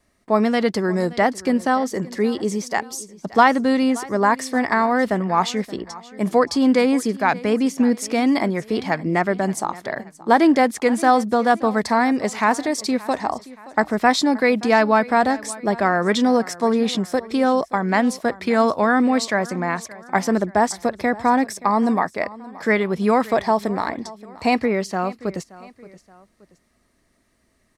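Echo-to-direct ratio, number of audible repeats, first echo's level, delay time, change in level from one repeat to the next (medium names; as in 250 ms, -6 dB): -18.5 dB, 2, -19.5 dB, 575 ms, -7.0 dB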